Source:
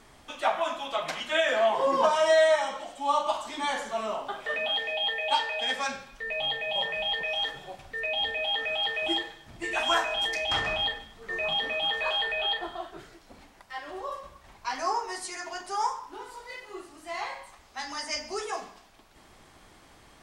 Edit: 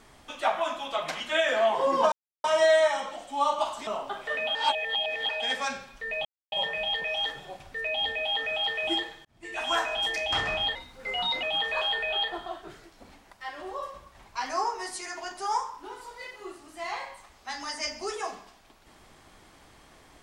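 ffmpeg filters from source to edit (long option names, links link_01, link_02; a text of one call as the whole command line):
ffmpeg -i in.wav -filter_complex "[0:a]asplit=10[link_01][link_02][link_03][link_04][link_05][link_06][link_07][link_08][link_09][link_10];[link_01]atrim=end=2.12,asetpts=PTS-STARTPTS,afade=type=out:start_time=2.116:duration=0.004:curve=hsin,apad=pad_dur=0.32[link_11];[link_02]atrim=start=2.12:end=3.552,asetpts=PTS-STARTPTS,afade=type=in:duration=0.004:curve=hsin[link_12];[link_03]atrim=start=4.058:end=4.742[link_13];[link_04]atrim=start=4.738:end=5.482,asetpts=PTS-STARTPTS,areverse[link_14];[link_05]atrim=start=5.478:end=6.44,asetpts=PTS-STARTPTS,afade=type=out:start_time=0.958:duration=0.004:curve=hsin[link_15];[link_06]atrim=start=6.44:end=6.71,asetpts=PTS-STARTPTS,volume=0[link_16];[link_07]atrim=start=6.71:end=9.44,asetpts=PTS-STARTPTS,afade=type=in:duration=0.004:curve=hsin,afade=type=out:start_time=2.726:duration=0.004:curve=hsin[link_17];[link_08]atrim=start=9.44:end=10.944,asetpts=PTS-STARTPTS,afade=type=in:duration=0.85:curve=qsin[link_18];[link_09]atrim=start=10.94:end=11.72,asetpts=PTS-STARTPTS,asetrate=50715,aresample=44100,atrim=end_sample=29911,asetpts=PTS-STARTPTS[link_19];[link_10]atrim=start=11.716[link_20];[link_11][link_12]concat=n=2:v=0:a=1[link_21];[link_21][link_13]acrossfade=duration=0.004:curve1=hsin:curve2=hsin[link_22];[link_22][link_14]acrossfade=duration=0.004:curve1=hsin:curve2=hsin[link_23];[link_15][link_16][link_17][link_18]concat=n=4:v=0:a=1[link_24];[link_23][link_24]acrossfade=duration=0.004:curve1=hsin:curve2=hsin[link_25];[link_25][link_19]acrossfade=duration=0.004:curve1=hsin:curve2=hsin[link_26];[link_26][link_20]acrossfade=duration=0.004:curve1=hsin:curve2=hsin" out.wav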